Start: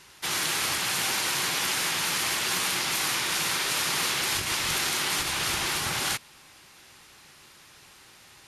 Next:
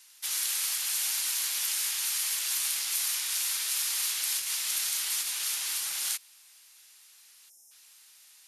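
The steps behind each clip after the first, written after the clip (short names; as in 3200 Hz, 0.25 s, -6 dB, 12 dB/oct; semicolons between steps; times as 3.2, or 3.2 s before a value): spectral gain 7.5–7.71, 890–5100 Hz -25 dB; differentiator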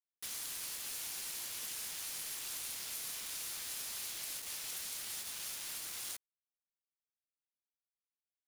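compressor 2:1, threshold -48 dBFS, peak gain reduction 12 dB; bit-crush 7-bit; gain -2 dB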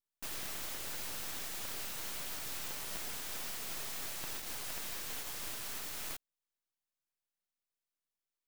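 full-wave rectifier; gain +2 dB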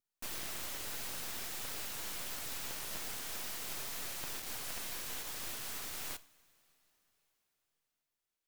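vibrato 7 Hz 79 cents; two-slope reverb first 0.47 s, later 4.6 s, from -18 dB, DRR 14.5 dB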